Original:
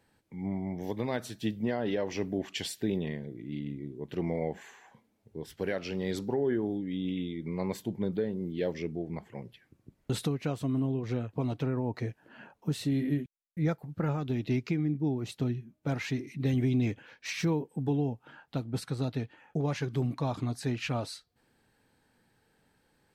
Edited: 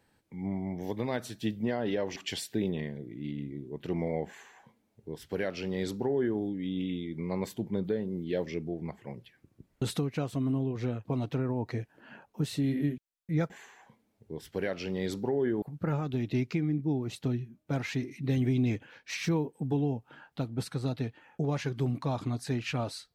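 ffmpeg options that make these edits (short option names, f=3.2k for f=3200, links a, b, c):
-filter_complex "[0:a]asplit=4[a][b][c][d];[a]atrim=end=2.162[e];[b]atrim=start=2.438:end=13.782[f];[c]atrim=start=4.548:end=6.672[g];[d]atrim=start=13.778[h];[e][f]acrossfade=d=0.004:c1=hsin:c2=hsin[i];[i][g]acrossfade=d=0.004:c1=hsin:c2=hsin[j];[j][h]acrossfade=d=0.004:c1=hsin:c2=hsin"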